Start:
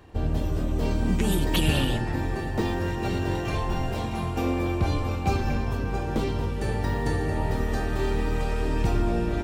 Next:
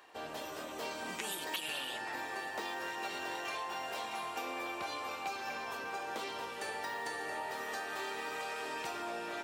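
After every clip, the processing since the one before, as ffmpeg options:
ffmpeg -i in.wav -af "highpass=800,acompressor=threshold=-36dB:ratio=6" out.wav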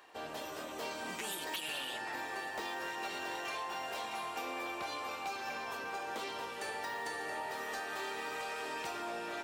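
ffmpeg -i in.wav -af "volume=33dB,asoftclip=hard,volume=-33dB" out.wav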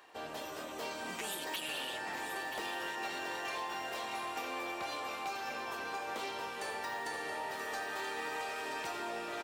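ffmpeg -i in.wav -af "aecho=1:1:981:0.376" out.wav

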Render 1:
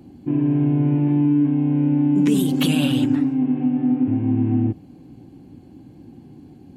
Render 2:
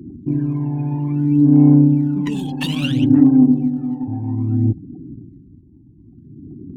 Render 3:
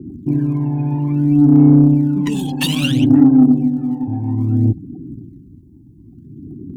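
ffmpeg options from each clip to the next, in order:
ffmpeg -i in.wav -af "afftfilt=real='re*gte(hypot(re,im),0.01)':imag='im*gte(hypot(re,im),0.01)':win_size=1024:overlap=0.75,adynamicsmooth=sensitivity=3.5:basefreq=2400,aphaser=in_gain=1:out_gain=1:delay=1.2:decay=0.76:speed=0.6:type=sinusoidal,volume=-2.5dB" out.wav
ffmpeg -i in.wav -filter_complex "[0:a]highshelf=frequency=4100:gain=12,asplit=2[link_01][link_02];[link_02]asoftclip=type=tanh:threshold=-10.5dB,volume=-3.5dB[link_03];[link_01][link_03]amix=inputs=2:normalize=0,adynamicequalizer=threshold=0.0282:dfrequency=1700:dqfactor=0.7:tfrequency=1700:tqfactor=0.7:attack=5:release=100:ratio=0.375:range=2:mode=cutabove:tftype=highshelf,volume=-1.5dB" out.wav

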